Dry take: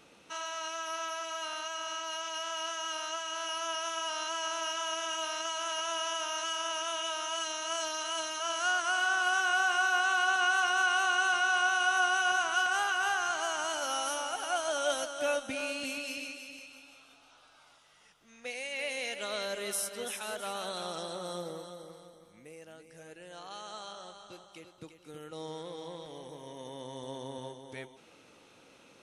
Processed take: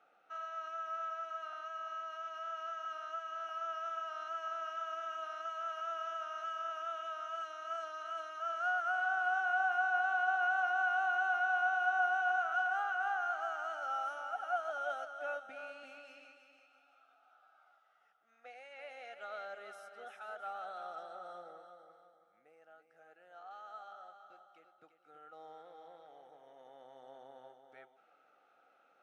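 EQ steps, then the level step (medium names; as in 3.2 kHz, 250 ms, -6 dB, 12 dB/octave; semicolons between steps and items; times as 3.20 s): two resonant band-passes 1 kHz, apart 0.79 oct; 0.0 dB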